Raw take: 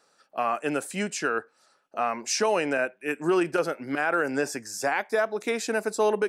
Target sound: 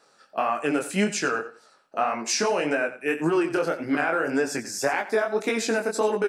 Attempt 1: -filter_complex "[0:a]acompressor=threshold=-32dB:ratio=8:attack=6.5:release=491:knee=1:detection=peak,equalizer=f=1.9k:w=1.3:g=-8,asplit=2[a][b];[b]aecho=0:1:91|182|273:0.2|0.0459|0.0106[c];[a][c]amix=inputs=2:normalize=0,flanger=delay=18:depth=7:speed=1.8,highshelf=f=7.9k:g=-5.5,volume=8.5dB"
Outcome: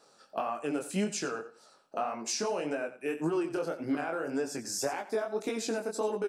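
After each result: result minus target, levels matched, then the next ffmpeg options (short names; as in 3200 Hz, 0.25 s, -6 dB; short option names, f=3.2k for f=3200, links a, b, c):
compressor: peak gain reduction +7.5 dB; 2000 Hz band -5.0 dB
-filter_complex "[0:a]acompressor=threshold=-23.5dB:ratio=8:attack=6.5:release=491:knee=1:detection=peak,equalizer=f=1.9k:w=1.3:g=-8,asplit=2[a][b];[b]aecho=0:1:91|182|273:0.2|0.0459|0.0106[c];[a][c]amix=inputs=2:normalize=0,flanger=delay=18:depth=7:speed=1.8,highshelf=f=7.9k:g=-5.5,volume=8.5dB"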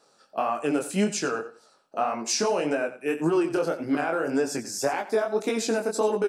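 2000 Hz band -5.0 dB
-filter_complex "[0:a]acompressor=threshold=-23.5dB:ratio=8:attack=6.5:release=491:knee=1:detection=peak,asplit=2[a][b];[b]aecho=0:1:91|182|273:0.2|0.0459|0.0106[c];[a][c]amix=inputs=2:normalize=0,flanger=delay=18:depth=7:speed=1.8,highshelf=f=7.9k:g=-5.5,volume=8.5dB"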